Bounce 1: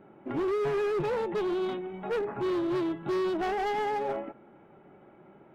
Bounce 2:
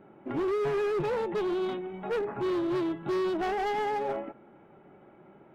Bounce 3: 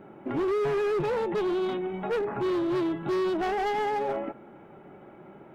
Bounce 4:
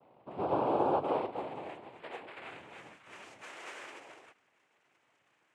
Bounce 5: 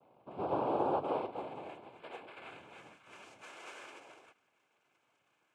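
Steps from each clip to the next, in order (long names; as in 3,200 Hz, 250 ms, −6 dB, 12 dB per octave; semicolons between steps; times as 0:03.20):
no processing that can be heard
brickwall limiter −30 dBFS, peak gain reduction 5 dB; level +6 dB
band-pass filter sweep 480 Hz → 2,100 Hz, 0:01.04–0:03.17; cochlear-implant simulation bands 4; expander for the loud parts 1.5 to 1, over −40 dBFS
Butterworth band-reject 1,900 Hz, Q 6.9; level −3 dB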